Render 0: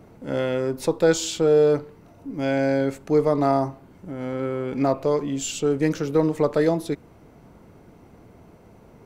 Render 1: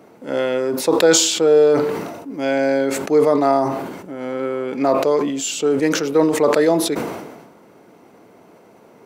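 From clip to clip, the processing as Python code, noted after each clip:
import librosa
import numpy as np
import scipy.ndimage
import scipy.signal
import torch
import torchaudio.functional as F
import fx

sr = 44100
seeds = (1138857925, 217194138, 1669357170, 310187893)

y = scipy.signal.sosfilt(scipy.signal.butter(2, 280.0, 'highpass', fs=sr, output='sos'), x)
y = fx.sustainer(y, sr, db_per_s=47.0)
y = F.gain(torch.from_numpy(y), 5.0).numpy()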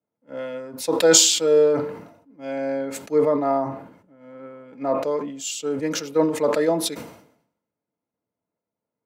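y = fx.notch_comb(x, sr, f0_hz=380.0)
y = fx.band_widen(y, sr, depth_pct=100)
y = F.gain(torch.from_numpy(y), -6.0).numpy()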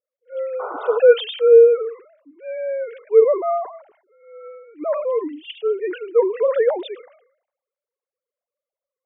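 y = fx.sine_speech(x, sr)
y = fx.spec_paint(y, sr, seeds[0], shape='noise', start_s=0.59, length_s=0.39, low_hz=380.0, high_hz=1500.0, level_db=-33.0)
y = F.gain(torch.from_numpy(y), 3.5).numpy()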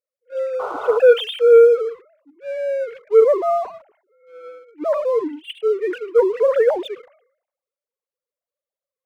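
y = fx.leveller(x, sr, passes=1)
y = F.gain(torch.from_numpy(y), -1.5).numpy()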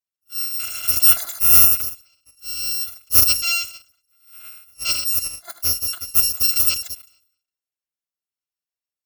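y = fx.bit_reversed(x, sr, seeds[1], block=256)
y = F.gain(torch.from_numpy(y), -2.0).numpy()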